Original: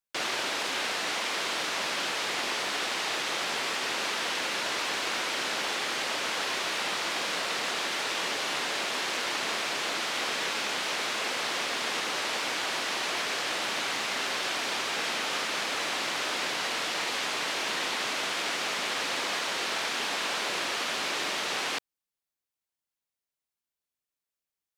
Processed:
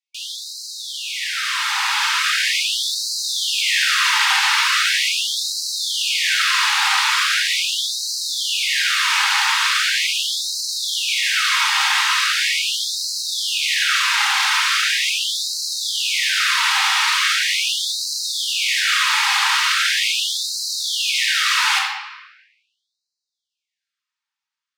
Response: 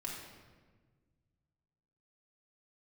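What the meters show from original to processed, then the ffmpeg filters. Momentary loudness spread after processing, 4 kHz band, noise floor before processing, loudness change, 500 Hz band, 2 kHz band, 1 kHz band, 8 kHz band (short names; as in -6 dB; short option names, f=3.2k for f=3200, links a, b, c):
6 LU, +13.0 dB, under -85 dBFS, +12.0 dB, under -30 dB, +11.5 dB, +8.5 dB, +12.5 dB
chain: -filter_complex "[0:a]asplit=2[a][b];[b]aeval=exprs='0.168*sin(PI/2*3.55*val(0)/0.168)':c=same,volume=-6dB[c];[a][c]amix=inputs=2:normalize=0[d];[1:a]atrim=start_sample=2205[e];[d][e]afir=irnorm=-1:irlink=0,acrossover=split=6800[f][g];[g]aeval=exprs='sgn(val(0))*max(abs(val(0))-0.00224,0)':c=same[h];[f][h]amix=inputs=2:normalize=0,dynaudnorm=f=410:g=9:m=11.5dB,afftfilt=real='re*gte(b*sr/1024,750*pow(3900/750,0.5+0.5*sin(2*PI*0.4*pts/sr)))':imag='im*gte(b*sr/1024,750*pow(3900/750,0.5+0.5*sin(2*PI*0.4*pts/sr)))':win_size=1024:overlap=0.75,volume=-2.5dB"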